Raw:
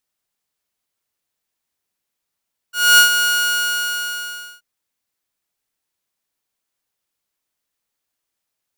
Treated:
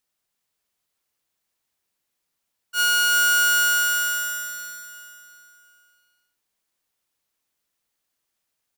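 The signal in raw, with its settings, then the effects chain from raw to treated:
ADSR saw 1.44 kHz, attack 251 ms, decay 106 ms, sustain -8.5 dB, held 0.51 s, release 1370 ms -3.5 dBFS
peak limiter -14.5 dBFS; on a send: feedback delay 355 ms, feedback 41%, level -6.5 dB

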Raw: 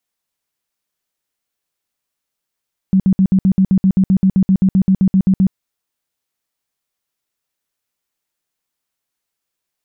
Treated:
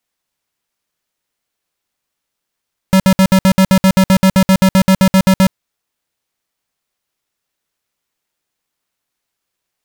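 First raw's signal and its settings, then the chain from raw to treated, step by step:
tone bursts 190 Hz, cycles 13, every 0.13 s, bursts 20, -8 dBFS
square wave that keeps the level

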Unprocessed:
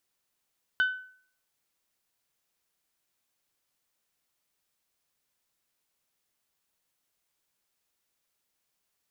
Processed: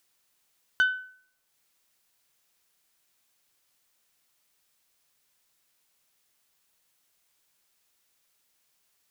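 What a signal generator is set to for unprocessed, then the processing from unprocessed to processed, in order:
glass hit bell, lowest mode 1.51 kHz, decay 0.53 s, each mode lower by 11.5 dB, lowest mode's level -19 dB
in parallel at -5.5 dB: overload inside the chain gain 22 dB; on the sum: tape noise reduction on one side only encoder only

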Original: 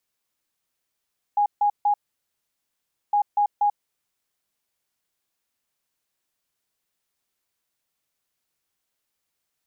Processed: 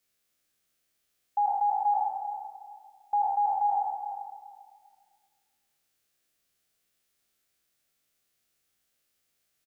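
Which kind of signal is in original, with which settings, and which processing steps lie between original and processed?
beep pattern sine 824 Hz, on 0.09 s, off 0.15 s, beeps 3, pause 1.19 s, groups 2, -16.5 dBFS
spectral sustain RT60 1.57 s; peaking EQ 950 Hz -10 dB 0.37 oct; feedback delay 396 ms, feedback 22%, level -12 dB

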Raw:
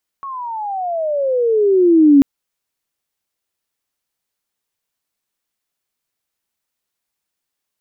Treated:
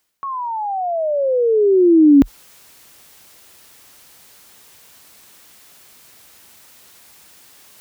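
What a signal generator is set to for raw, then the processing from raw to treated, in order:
gliding synth tone sine, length 1.99 s, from 1.12 kHz, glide -24.5 st, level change +20.5 dB, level -4.5 dB
high-pass 40 Hz 24 dB/octave; reverse; upward compressor, threshold -21 dBFS; reverse

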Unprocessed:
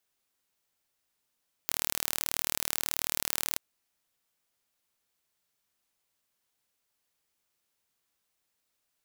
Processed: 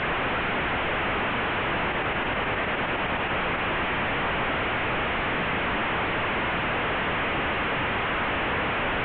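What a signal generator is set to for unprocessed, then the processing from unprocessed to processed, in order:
pulse train 38.4 per s, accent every 0, -2.5 dBFS 1.90 s
one-bit delta coder 16 kbps, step -14.5 dBFS; peak limiter -19.5 dBFS; distance through air 310 m

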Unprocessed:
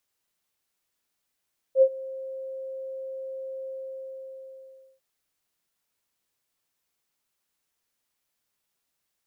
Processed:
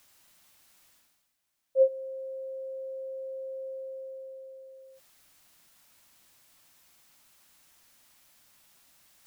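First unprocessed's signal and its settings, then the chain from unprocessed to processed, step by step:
ADSR sine 530 Hz, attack 68 ms, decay 65 ms, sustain -21.5 dB, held 1.92 s, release 1330 ms -11.5 dBFS
peaking EQ 430 Hz -12 dB 0.24 oct; reverse; upward compressor, threshold -46 dBFS; reverse

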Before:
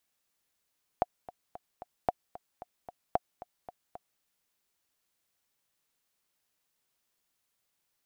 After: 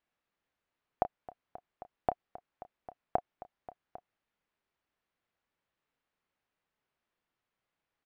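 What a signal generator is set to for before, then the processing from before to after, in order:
metronome 225 bpm, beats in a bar 4, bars 3, 720 Hz, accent 18 dB -12 dBFS
low-pass 2.3 kHz 12 dB/octave; doubling 30 ms -12.5 dB

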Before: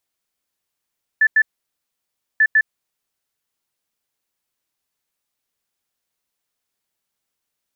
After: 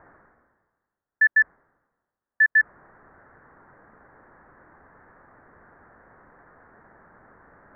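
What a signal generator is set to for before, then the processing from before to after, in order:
beep pattern sine 1.75 kHz, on 0.06 s, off 0.09 s, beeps 2, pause 0.98 s, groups 2, -10 dBFS
steep low-pass 1.8 kHz 72 dB/octave; reverse; upward compressor, threshold -25 dBFS; reverse

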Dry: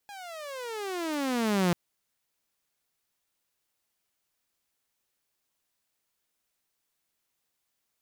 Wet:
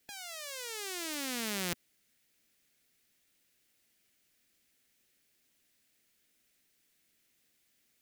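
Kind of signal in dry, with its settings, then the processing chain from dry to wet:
gliding synth tone saw, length 1.64 s, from 830 Hz, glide -27.5 st, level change +20 dB, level -19 dB
graphic EQ 250/1000/2000 Hz +6/-11/+5 dB; spectrum-flattening compressor 2:1

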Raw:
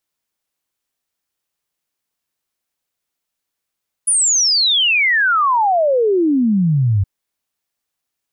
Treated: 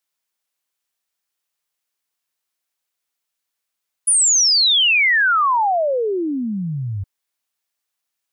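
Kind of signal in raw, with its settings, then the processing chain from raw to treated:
log sweep 10 kHz -> 93 Hz 2.97 s -11.5 dBFS
bass shelf 460 Hz -10.5 dB

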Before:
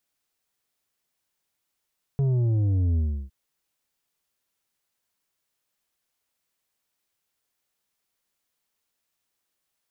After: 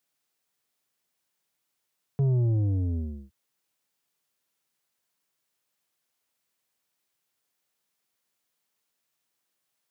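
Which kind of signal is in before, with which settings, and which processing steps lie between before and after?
sub drop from 140 Hz, over 1.11 s, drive 7 dB, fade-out 0.33 s, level -20.5 dB
high-pass 98 Hz 24 dB/octave

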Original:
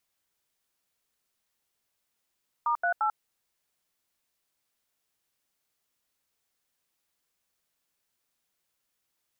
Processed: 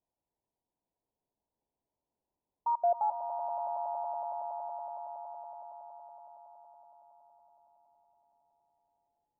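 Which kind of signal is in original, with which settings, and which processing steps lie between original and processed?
DTMF "*38", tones 92 ms, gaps 82 ms, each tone -26 dBFS
Chebyshev low-pass 980 Hz, order 6; dynamic bell 590 Hz, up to +7 dB, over -46 dBFS, Q 2.6; on a send: echo with a slow build-up 93 ms, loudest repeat 8, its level -12.5 dB

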